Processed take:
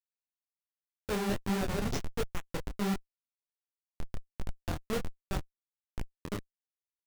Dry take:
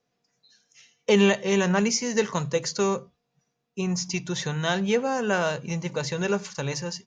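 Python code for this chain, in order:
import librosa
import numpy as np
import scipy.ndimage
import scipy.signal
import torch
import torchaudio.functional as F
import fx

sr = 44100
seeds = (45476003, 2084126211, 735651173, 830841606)

y = fx.schmitt(x, sr, flips_db=-18.5)
y = fx.detune_double(y, sr, cents=46)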